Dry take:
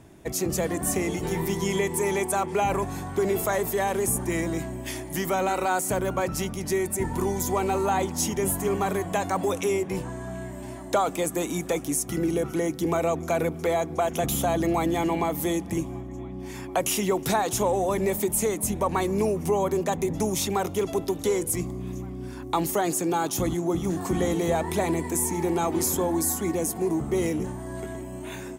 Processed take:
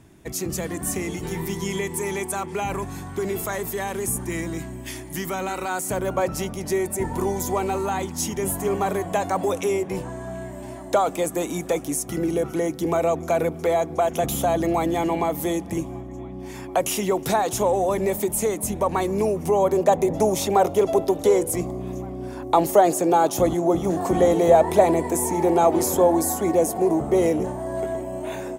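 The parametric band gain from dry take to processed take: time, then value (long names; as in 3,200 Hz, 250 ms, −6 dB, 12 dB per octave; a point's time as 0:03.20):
parametric band 610 Hz 1.2 octaves
0:05.70 −5 dB
0:06.19 +5.5 dB
0:07.38 +5.5 dB
0:08.12 −5.5 dB
0:08.64 +4.5 dB
0:19.40 +4.5 dB
0:19.98 +13.5 dB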